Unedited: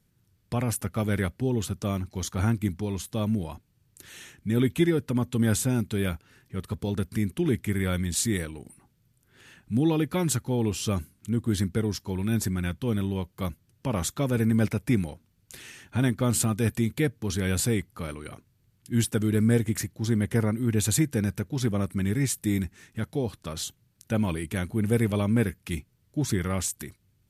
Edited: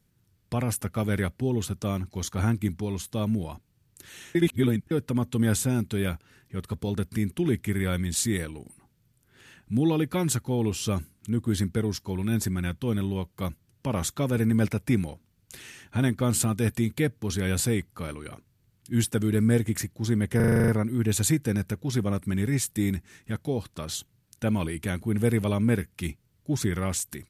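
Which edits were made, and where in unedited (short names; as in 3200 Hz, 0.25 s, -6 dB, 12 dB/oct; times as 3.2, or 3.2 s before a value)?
4.35–4.91 reverse
20.36 stutter 0.04 s, 9 plays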